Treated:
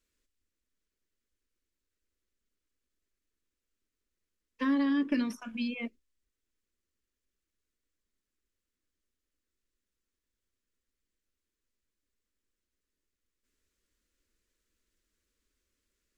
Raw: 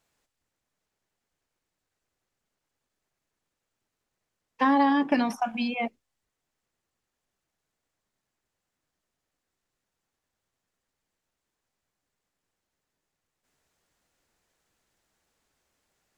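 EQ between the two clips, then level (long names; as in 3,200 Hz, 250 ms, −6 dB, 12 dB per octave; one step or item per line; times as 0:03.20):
low-shelf EQ 140 Hz +11.5 dB
phaser with its sweep stopped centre 320 Hz, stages 4
−5.5 dB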